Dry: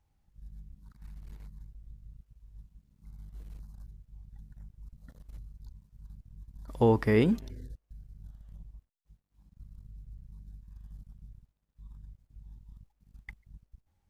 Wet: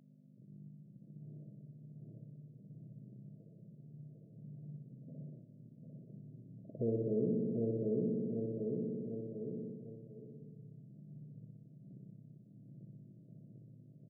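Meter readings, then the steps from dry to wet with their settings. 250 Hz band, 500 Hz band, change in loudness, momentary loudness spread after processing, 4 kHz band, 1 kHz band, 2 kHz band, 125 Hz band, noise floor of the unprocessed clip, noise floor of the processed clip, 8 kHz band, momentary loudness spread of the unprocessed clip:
−4.5 dB, −5.0 dB, −13.0 dB, 22 LU, below −30 dB, below −25 dB, below −40 dB, −6.0 dB, −77 dBFS, −60 dBFS, can't be measured, 11 LU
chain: transient designer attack −7 dB, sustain 0 dB
repeating echo 748 ms, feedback 33%, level −3 dB
in parallel at −3 dB: brickwall limiter −24 dBFS, peak gain reduction 10 dB
on the sum: flutter between parallel walls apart 10.4 metres, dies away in 1.4 s
mains hum 50 Hz, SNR 27 dB
downward compressor 2.5 to 1, threshold −43 dBFS, peak gain reduction 18 dB
brick-wall band-pass 110–680 Hz
every ending faded ahead of time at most 300 dB per second
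level +3.5 dB

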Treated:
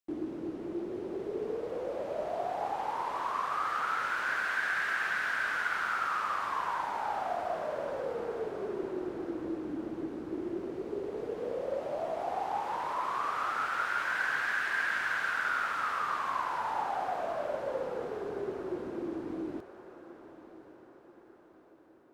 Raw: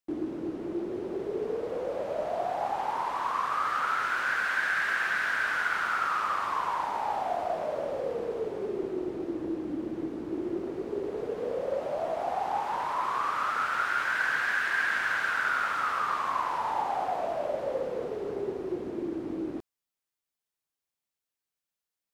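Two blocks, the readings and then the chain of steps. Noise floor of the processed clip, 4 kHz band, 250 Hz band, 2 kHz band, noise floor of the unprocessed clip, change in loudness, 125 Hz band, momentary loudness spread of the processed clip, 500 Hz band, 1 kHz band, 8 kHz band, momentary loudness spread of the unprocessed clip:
−57 dBFS, −3.5 dB, −3.5 dB, −3.5 dB, below −85 dBFS, −3.5 dB, −3.5 dB, 8 LU, −3.5 dB, −3.5 dB, −3.5 dB, 8 LU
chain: feedback delay with all-pass diffusion 1,076 ms, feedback 48%, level −15 dB
level −3.5 dB

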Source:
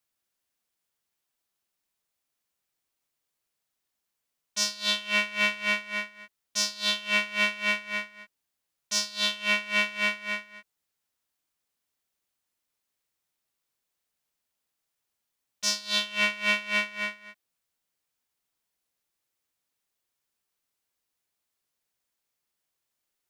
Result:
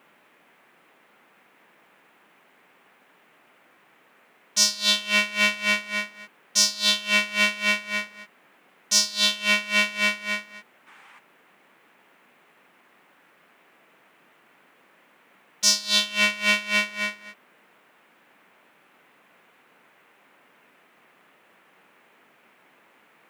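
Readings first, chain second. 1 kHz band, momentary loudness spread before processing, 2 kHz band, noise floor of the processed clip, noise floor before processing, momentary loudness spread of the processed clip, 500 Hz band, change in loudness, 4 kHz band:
+3.0 dB, 9 LU, +3.5 dB, −60 dBFS, −83 dBFS, 10 LU, +3.0 dB, +5.0 dB, +6.5 dB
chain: bass and treble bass +3 dB, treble +7 dB
noise in a band 170–2,500 Hz −62 dBFS
gain on a spectral selection 0:10.87–0:11.19, 770–10,000 Hz +9 dB
level +3 dB

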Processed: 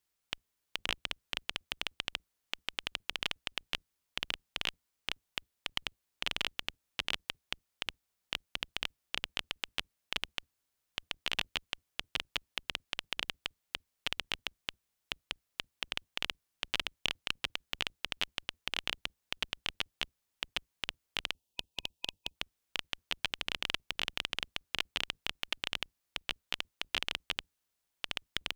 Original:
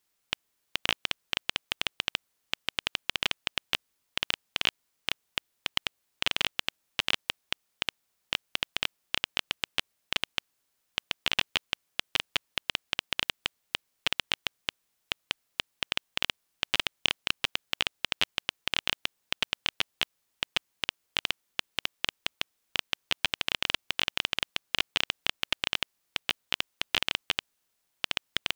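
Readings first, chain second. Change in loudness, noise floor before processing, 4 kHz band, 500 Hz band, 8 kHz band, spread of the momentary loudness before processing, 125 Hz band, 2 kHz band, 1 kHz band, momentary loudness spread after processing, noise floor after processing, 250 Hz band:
−6.5 dB, −77 dBFS, −6.5 dB, −6.5 dB, −6.5 dB, 8 LU, −5.5 dB, −6.5 dB, −6.5 dB, 8 LU, −84 dBFS, −6.5 dB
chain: sub-octave generator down 2 octaves, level 0 dB
gain on a spectral selection 0:21.32–0:22.35, 970–2,500 Hz −14 dB
level −6.5 dB

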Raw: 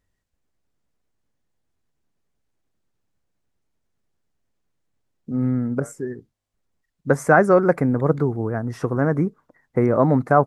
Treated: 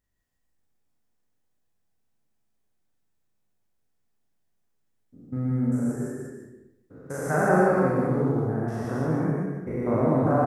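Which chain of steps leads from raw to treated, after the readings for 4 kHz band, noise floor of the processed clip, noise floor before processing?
can't be measured, −72 dBFS, −76 dBFS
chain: spectrum averaged block by block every 200 ms
high-shelf EQ 9,900 Hz +9.5 dB
loudspeakers that aren't time-aligned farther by 13 metres −1 dB, 64 metres −2 dB
dense smooth reverb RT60 0.81 s, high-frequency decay 0.75×, pre-delay 105 ms, DRR 0.5 dB
level −7.5 dB

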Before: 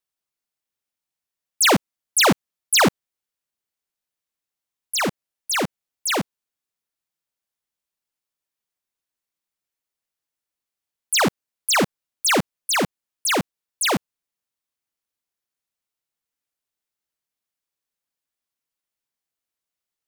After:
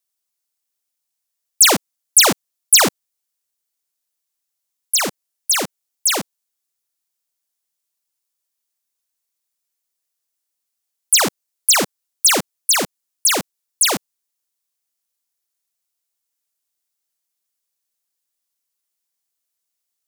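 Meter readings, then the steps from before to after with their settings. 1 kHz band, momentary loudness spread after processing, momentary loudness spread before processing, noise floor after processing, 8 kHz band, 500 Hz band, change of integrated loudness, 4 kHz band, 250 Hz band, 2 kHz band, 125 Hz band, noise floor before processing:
0.0 dB, 13 LU, 11 LU, −79 dBFS, +9.0 dB, −0.5 dB, +5.5 dB, +5.0 dB, −3.0 dB, +0.5 dB, −5.0 dB, below −85 dBFS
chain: bass and treble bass −6 dB, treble +10 dB

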